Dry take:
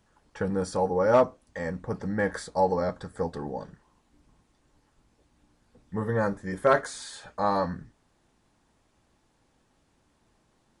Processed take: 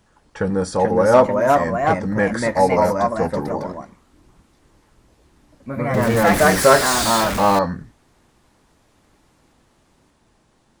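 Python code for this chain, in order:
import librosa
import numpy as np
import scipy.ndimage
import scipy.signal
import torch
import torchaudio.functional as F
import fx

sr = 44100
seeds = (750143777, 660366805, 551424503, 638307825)

y = fx.zero_step(x, sr, step_db=-26.5, at=(6.27, 7.59))
y = fx.echo_pitch(y, sr, ms=481, semitones=2, count=2, db_per_echo=-3.0)
y = y * librosa.db_to_amplitude(7.5)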